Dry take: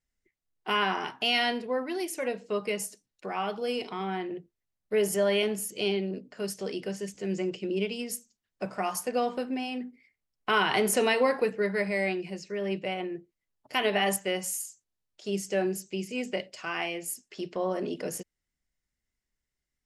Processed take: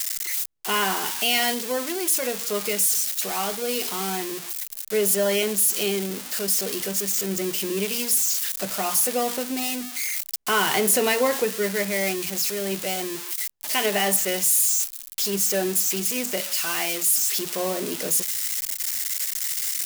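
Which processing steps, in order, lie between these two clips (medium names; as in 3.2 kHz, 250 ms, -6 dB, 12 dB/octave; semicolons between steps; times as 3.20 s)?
zero-crossing glitches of -19 dBFS; trim +2.5 dB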